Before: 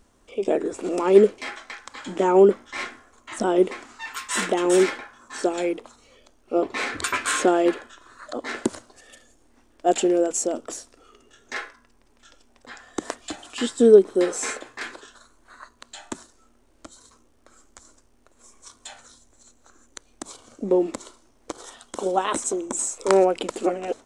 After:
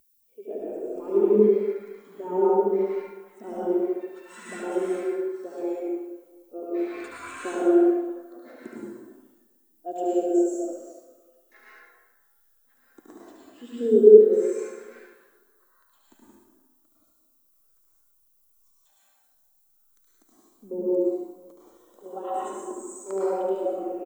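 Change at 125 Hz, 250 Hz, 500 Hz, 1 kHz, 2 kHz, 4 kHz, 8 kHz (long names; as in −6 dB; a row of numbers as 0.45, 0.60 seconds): can't be measured, −1.5 dB, −1.0 dB, −7.0 dB, below −10 dB, below −15 dB, below −15 dB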